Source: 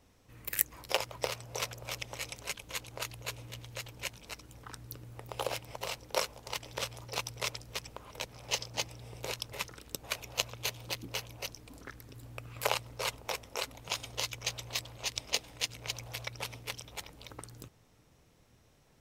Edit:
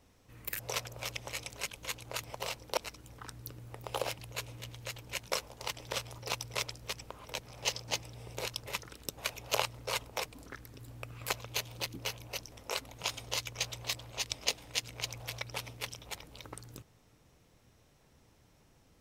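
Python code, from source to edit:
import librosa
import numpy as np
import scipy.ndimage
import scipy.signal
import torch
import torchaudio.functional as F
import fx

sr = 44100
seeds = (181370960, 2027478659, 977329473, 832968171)

y = fx.edit(x, sr, fx.cut(start_s=0.59, length_s=0.86),
    fx.swap(start_s=3.09, length_s=1.13, other_s=5.64, other_length_s=0.54),
    fx.swap(start_s=10.4, length_s=1.21, other_s=12.66, other_length_s=0.72), tone=tone)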